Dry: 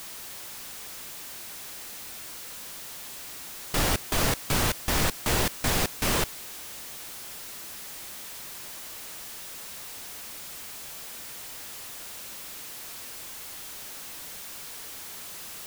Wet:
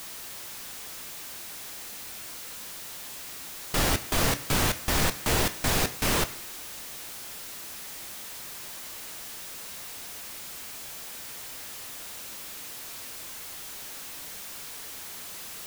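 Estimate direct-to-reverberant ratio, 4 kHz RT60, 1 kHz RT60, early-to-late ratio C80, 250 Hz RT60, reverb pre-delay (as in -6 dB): 9.5 dB, 0.95 s, 1.0 s, 18.5 dB, 0.95 s, 11 ms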